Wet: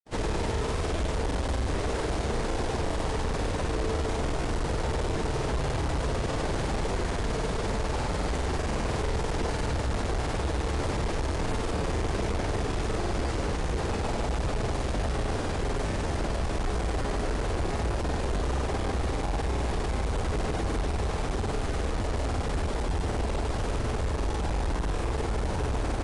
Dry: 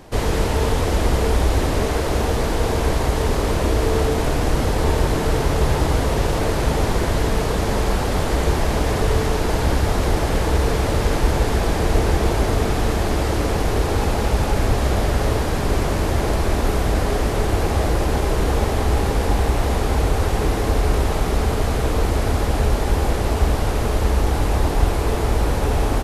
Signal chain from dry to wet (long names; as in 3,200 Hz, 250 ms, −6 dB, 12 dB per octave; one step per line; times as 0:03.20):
gain into a clipping stage and back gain 19 dB
downsampling to 22,050 Hz
granular cloud, pitch spread up and down by 0 semitones
level −5 dB